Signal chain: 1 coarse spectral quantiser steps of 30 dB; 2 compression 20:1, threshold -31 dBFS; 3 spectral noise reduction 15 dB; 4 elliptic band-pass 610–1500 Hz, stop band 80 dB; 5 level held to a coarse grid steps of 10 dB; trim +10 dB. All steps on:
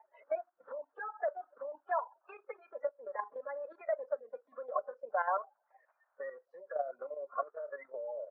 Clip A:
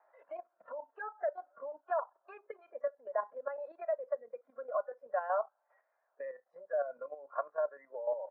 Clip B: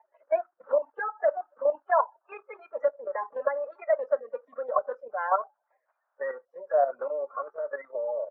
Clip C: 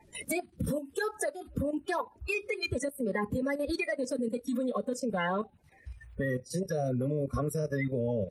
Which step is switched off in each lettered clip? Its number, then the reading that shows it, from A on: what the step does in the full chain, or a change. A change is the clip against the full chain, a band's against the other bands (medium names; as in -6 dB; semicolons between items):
1, momentary loudness spread change +1 LU; 2, mean gain reduction 7.0 dB; 4, crest factor change -6.5 dB